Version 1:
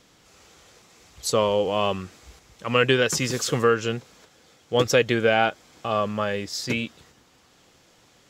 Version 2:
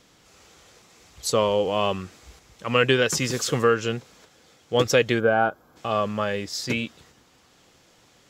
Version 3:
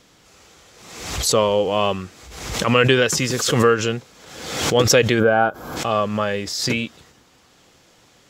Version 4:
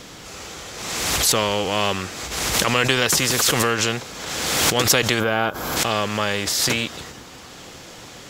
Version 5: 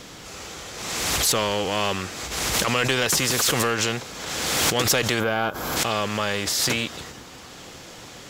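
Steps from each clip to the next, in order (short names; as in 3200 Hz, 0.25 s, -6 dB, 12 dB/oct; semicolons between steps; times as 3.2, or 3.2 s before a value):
spectral gain 5.19–5.77, 1700–11000 Hz -15 dB
backwards sustainer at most 56 dB/s; gain +3.5 dB
spectral compressor 2:1
soft clip -10 dBFS, distortion -17 dB; gain -1.5 dB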